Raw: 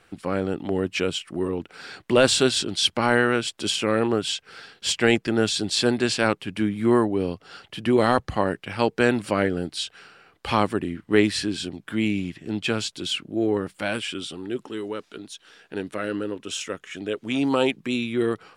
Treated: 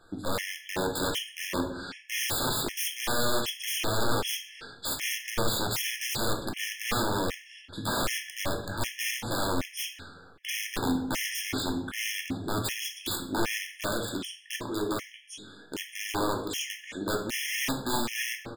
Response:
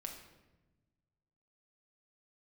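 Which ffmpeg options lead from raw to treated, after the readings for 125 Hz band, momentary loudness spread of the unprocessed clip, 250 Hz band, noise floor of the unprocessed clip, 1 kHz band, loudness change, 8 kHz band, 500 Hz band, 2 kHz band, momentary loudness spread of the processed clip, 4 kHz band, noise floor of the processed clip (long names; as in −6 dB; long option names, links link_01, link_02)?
−6.0 dB, 12 LU, −10.0 dB, −63 dBFS, −5.0 dB, −6.5 dB, −0.5 dB, −11.0 dB, −5.0 dB, 8 LU, −5.0 dB, −52 dBFS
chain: -filter_complex "[0:a]asplit=2[link_01][link_02];[link_02]alimiter=limit=-15.5dB:level=0:latency=1:release=474,volume=-2dB[link_03];[link_01][link_03]amix=inputs=2:normalize=0,asplit=2[link_04][link_05];[link_05]adelay=19,volume=-10.5dB[link_06];[link_04][link_06]amix=inputs=2:normalize=0,aeval=exprs='(mod(7.08*val(0)+1,2)-1)/7.08':channel_layout=same[link_07];[1:a]atrim=start_sample=2205,asetrate=70560,aresample=44100[link_08];[link_07][link_08]afir=irnorm=-1:irlink=0,afftfilt=real='re*gt(sin(2*PI*1.3*pts/sr)*(1-2*mod(floor(b*sr/1024/1700),2)),0)':imag='im*gt(sin(2*PI*1.3*pts/sr)*(1-2*mod(floor(b*sr/1024/1700),2)),0)':win_size=1024:overlap=0.75,volume=2.5dB"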